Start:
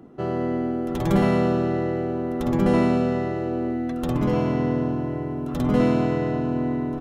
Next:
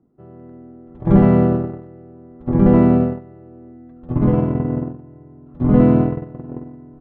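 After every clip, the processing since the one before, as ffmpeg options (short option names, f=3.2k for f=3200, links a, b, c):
-af "lowpass=1.6k,lowshelf=f=280:g=10,agate=range=-22dB:threshold=-15dB:ratio=16:detection=peak,volume=2dB"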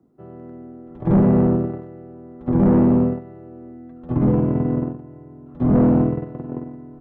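-filter_complex "[0:a]lowshelf=f=100:g=-7.5,acrossover=split=110|540[a][b][c];[c]acompressor=threshold=-36dB:ratio=5[d];[a][b][d]amix=inputs=3:normalize=0,asoftclip=type=tanh:threshold=-13dB,volume=3dB"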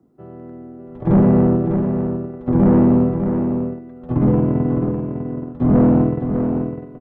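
-af "aecho=1:1:602:0.447,volume=2dB"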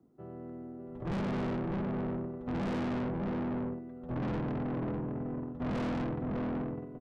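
-af "asoftclip=type=tanh:threshold=-24.5dB,volume=-7.5dB"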